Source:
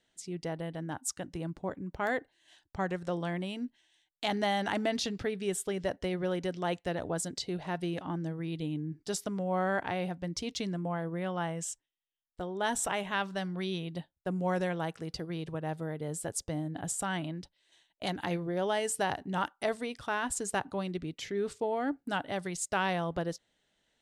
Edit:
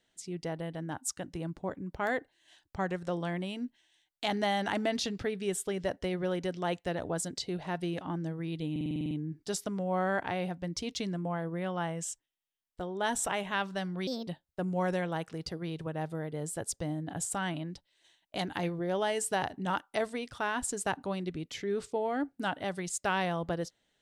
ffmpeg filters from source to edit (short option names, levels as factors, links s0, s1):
-filter_complex "[0:a]asplit=11[s0][s1][s2][s3][s4][s5][s6][s7][s8][s9][s10];[s0]atrim=end=8.762[s11];[s1]atrim=start=8.708:end=8.762[s12];[s2]atrim=start=8.708:end=8.762[s13];[s3]atrim=start=8.708:end=8.762[s14];[s4]atrim=start=8.708:end=8.762[s15];[s5]atrim=start=8.708:end=8.762[s16];[s6]atrim=start=8.708:end=8.762[s17];[s7]atrim=start=8.708:end=8.762[s18];[s8]atrim=start=8.708:end=13.674[s19];[s9]atrim=start=13.67:end=13.95,asetpts=PTS-STARTPTS,asetrate=60858,aresample=44100[s20];[s10]atrim=start=13.946[s21];[s11][s12]acrossfade=d=0.004:c1=hsin:c2=hsin[s22];[s22][s13]acrossfade=d=0.004:c1=hsin:c2=hsin[s23];[s23][s14]acrossfade=d=0.004:c1=hsin:c2=hsin[s24];[s24][s15]acrossfade=d=0.004:c1=hsin:c2=hsin[s25];[s25][s16]acrossfade=d=0.004:c1=hsin:c2=hsin[s26];[s26][s17]acrossfade=d=0.004:c1=hsin:c2=hsin[s27];[s27][s18]acrossfade=d=0.004:c1=hsin:c2=hsin[s28];[s28][s19]acrossfade=d=0.004:c1=hsin:c2=hsin[s29];[s29][s20]acrossfade=d=0.004:c1=hsin:c2=hsin[s30];[s30][s21]acrossfade=d=0.004:c1=hsin:c2=hsin"